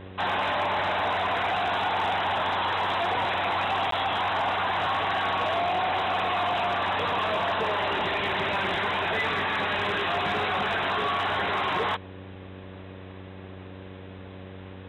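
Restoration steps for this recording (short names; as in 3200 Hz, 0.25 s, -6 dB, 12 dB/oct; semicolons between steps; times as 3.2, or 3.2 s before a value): clip repair -20 dBFS; de-hum 94.2 Hz, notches 6; interpolate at 3.91, 13 ms; noise print and reduce 30 dB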